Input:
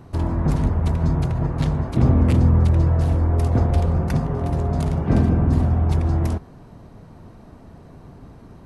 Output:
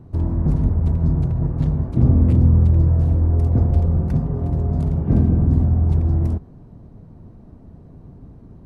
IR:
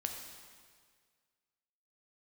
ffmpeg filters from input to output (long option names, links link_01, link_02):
-af "tiltshelf=frequency=640:gain=8.5,volume=-6dB"